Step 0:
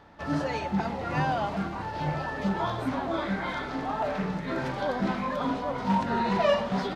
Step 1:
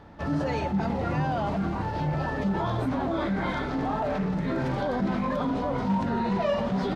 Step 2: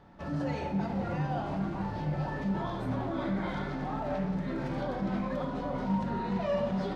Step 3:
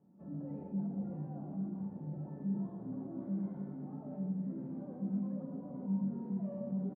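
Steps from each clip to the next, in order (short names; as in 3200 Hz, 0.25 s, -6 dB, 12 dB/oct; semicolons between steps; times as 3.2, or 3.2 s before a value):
low shelf 500 Hz +9 dB; in parallel at 0 dB: negative-ratio compressor -27 dBFS; on the sum: gain -8 dB
shoebox room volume 720 m³, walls mixed, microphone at 1 m; gain -8 dB
ladder band-pass 230 Hz, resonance 45%; echo 0.116 s -6 dB; gain +1.5 dB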